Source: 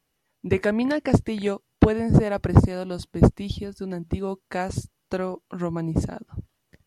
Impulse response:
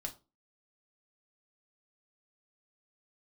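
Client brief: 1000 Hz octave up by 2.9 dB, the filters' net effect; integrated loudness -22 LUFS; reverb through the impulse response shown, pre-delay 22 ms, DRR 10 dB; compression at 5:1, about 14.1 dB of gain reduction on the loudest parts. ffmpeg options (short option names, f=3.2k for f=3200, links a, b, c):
-filter_complex "[0:a]equalizer=f=1k:t=o:g=4,acompressor=threshold=-25dB:ratio=5,asplit=2[a][b];[1:a]atrim=start_sample=2205,adelay=22[c];[b][c]afir=irnorm=-1:irlink=0,volume=-8.5dB[d];[a][d]amix=inputs=2:normalize=0,volume=9.5dB"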